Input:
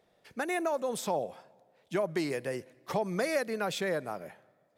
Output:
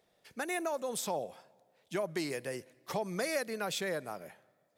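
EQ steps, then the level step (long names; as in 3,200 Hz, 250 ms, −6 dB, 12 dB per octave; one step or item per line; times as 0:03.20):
high-shelf EQ 3,100 Hz +7.5 dB
−4.5 dB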